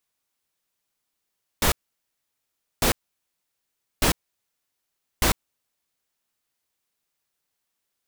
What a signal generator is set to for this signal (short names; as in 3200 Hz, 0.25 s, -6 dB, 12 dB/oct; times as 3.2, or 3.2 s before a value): noise bursts pink, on 0.10 s, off 1.10 s, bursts 4, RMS -19.5 dBFS